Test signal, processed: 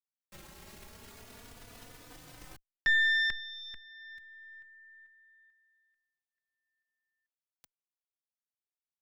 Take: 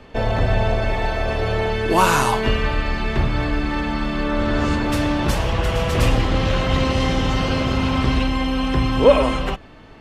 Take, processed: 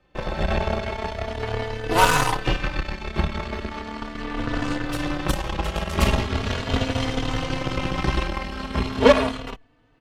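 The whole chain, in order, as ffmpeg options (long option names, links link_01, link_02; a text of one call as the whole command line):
ffmpeg -i in.wav -filter_complex "[0:a]aeval=exprs='0.891*(cos(1*acos(clip(val(0)/0.891,-1,1)))-cos(1*PI/2))+0.112*(cos(7*acos(clip(val(0)/0.891,-1,1)))-cos(7*PI/2))+0.0282*(cos(8*acos(clip(val(0)/0.891,-1,1)))-cos(8*PI/2))':channel_layout=same,asplit=2[link_01][link_02];[link_02]adelay=3.4,afreqshift=0.38[link_03];[link_01][link_03]amix=inputs=2:normalize=1,volume=3.5dB" out.wav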